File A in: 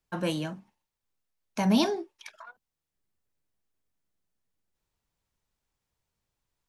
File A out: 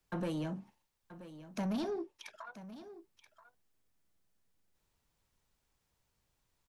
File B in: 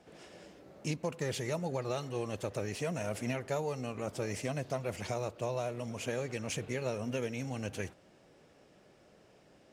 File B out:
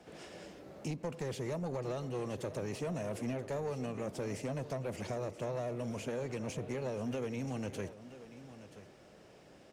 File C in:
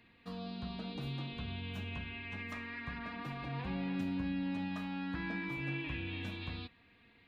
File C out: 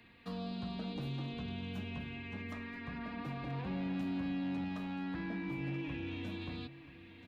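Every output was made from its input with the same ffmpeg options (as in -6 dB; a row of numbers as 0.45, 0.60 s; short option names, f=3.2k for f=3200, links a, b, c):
-filter_complex "[0:a]acrossover=split=120|730[a][b][c];[a]acompressor=threshold=-55dB:ratio=4[d];[b]acompressor=threshold=-35dB:ratio=4[e];[c]acompressor=threshold=-51dB:ratio=4[f];[d][e][f]amix=inputs=3:normalize=0,asoftclip=type=tanh:threshold=-34.5dB,asplit=2[g][h];[h]aecho=0:1:980:0.188[i];[g][i]amix=inputs=2:normalize=0,volume=3.5dB"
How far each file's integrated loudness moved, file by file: -12.0, -2.0, -0.5 LU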